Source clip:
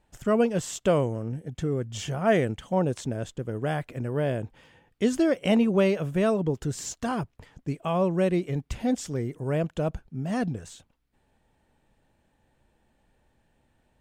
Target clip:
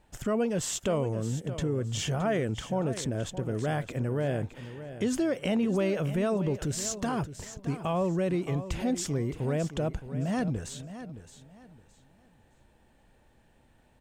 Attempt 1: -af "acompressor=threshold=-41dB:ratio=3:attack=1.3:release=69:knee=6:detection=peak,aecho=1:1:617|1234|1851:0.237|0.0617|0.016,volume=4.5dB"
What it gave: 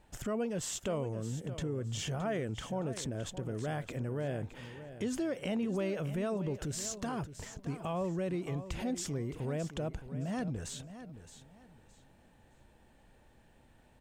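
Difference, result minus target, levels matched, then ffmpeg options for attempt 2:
compressor: peak gain reduction +6.5 dB
-af "acompressor=threshold=-31dB:ratio=3:attack=1.3:release=69:knee=6:detection=peak,aecho=1:1:617|1234|1851:0.237|0.0617|0.016,volume=4.5dB"

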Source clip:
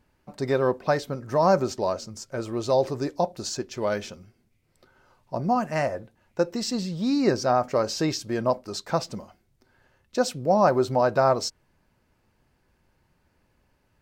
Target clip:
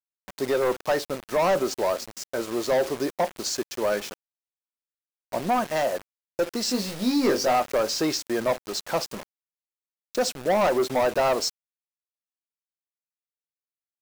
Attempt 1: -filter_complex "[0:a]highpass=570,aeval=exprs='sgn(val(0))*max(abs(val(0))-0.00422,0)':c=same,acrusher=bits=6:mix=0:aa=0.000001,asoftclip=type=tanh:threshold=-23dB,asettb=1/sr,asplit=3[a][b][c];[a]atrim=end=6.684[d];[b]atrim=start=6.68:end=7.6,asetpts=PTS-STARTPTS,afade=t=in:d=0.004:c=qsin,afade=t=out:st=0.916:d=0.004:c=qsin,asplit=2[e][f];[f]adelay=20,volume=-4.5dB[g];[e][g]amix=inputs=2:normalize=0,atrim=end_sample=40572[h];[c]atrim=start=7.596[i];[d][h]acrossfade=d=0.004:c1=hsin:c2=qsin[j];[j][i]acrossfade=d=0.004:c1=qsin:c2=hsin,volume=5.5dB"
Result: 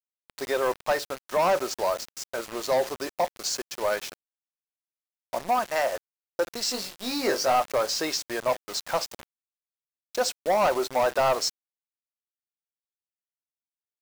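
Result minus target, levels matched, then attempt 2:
250 Hz band -7.0 dB
-filter_complex "[0:a]highpass=270,aeval=exprs='sgn(val(0))*max(abs(val(0))-0.00422,0)':c=same,acrusher=bits=6:mix=0:aa=0.000001,asoftclip=type=tanh:threshold=-23dB,asettb=1/sr,asplit=3[a][b][c];[a]atrim=end=6.684[d];[b]atrim=start=6.68:end=7.6,asetpts=PTS-STARTPTS,afade=t=in:d=0.004:c=qsin,afade=t=out:st=0.916:d=0.004:c=qsin,asplit=2[e][f];[f]adelay=20,volume=-4.5dB[g];[e][g]amix=inputs=2:normalize=0,atrim=end_sample=40572[h];[c]atrim=start=7.596[i];[d][h]acrossfade=d=0.004:c1=hsin:c2=qsin[j];[j][i]acrossfade=d=0.004:c1=qsin:c2=hsin,volume=5.5dB"

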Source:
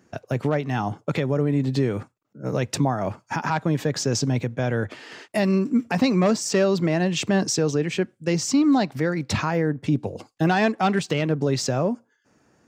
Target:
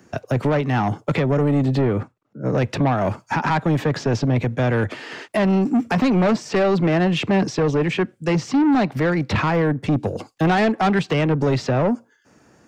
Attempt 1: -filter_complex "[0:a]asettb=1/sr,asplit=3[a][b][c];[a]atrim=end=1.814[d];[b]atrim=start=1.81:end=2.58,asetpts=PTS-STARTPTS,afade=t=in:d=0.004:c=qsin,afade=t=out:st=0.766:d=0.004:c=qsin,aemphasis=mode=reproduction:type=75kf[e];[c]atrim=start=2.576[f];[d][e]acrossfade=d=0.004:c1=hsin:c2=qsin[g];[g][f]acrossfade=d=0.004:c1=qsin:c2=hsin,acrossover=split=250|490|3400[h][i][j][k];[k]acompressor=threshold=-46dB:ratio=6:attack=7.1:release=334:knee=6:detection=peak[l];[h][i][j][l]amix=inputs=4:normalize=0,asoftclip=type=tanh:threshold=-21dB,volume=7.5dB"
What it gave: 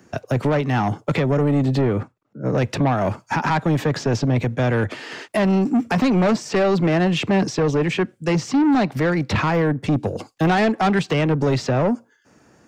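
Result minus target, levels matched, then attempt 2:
compressor: peak gain reduction -5 dB
-filter_complex "[0:a]asettb=1/sr,asplit=3[a][b][c];[a]atrim=end=1.814[d];[b]atrim=start=1.81:end=2.58,asetpts=PTS-STARTPTS,afade=t=in:d=0.004:c=qsin,afade=t=out:st=0.766:d=0.004:c=qsin,aemphasis=mode=reproduction:type=75kf[e];[c]atrim=start=2.576[f];[d][e]acrossfade=d=0.004:c1=hsin:c2=qsin[g];[g][f]acrossfade=d=0.004:c1=qsin:c2=hsin,acrossover=split=250|490|3400[h][i][j][k];[k]acompressor=threshold=-52dB:ratio=6:attack=7.1:release=334:knee=6:detection=peak[l];[h][i][j][l]amix=inputs=4:normalize=0,asoftclip=type=tanh:threshold=-21dB,volume=7.5dB"

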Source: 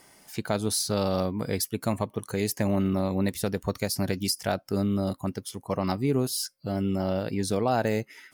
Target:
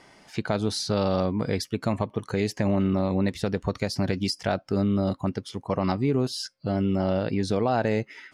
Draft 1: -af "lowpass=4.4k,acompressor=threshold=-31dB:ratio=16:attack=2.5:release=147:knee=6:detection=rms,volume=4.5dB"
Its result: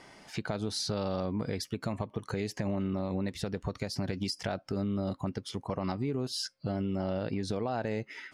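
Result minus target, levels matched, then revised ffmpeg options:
compressor: peak gain reduction +9.5 dB
-af "lowpass=4.4k,acompressor=threshold=-20.5dB:ratio=16:attack=2.5:release=147:knee=6:detection=rms,volume=4.5dB"

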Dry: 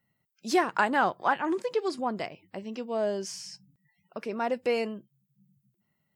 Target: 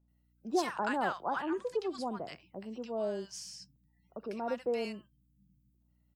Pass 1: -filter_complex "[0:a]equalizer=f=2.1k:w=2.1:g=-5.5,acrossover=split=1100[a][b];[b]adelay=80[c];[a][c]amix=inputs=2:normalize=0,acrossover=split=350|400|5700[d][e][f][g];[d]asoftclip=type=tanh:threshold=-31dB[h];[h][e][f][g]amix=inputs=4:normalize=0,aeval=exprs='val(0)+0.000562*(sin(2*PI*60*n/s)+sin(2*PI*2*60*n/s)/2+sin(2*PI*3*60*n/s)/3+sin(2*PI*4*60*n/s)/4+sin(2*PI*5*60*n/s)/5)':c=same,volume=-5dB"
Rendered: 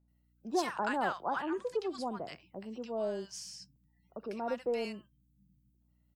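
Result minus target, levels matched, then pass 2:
soft clip: distortion +17 dB
-filter_complex "[0:a]equalizer=f=2.1k:w=2.1:g=-5.5,acrossover=split=1100[a][b];[b]adelay=80[c];[a][c]amix=inputs=2:normalize=0,acrossover=split=350|400|5700[d][e][f][g];[d]asoftclip=type=tanh:threshold=-19.5dB[h];[h][e][f][g]amix=inputs=4:normalize=0,aeval=exprs='val(0)+0.000562*(sin(2*PI*60*n/s)+sin(2*PI*2*60*n/s)/2+sin(2*PI*3*60*n/s)/3+sin(2*PI*4*60*n/s)/4+sin(2*PI*5*60*n/s)/5)':c=same,volume=-5dB"

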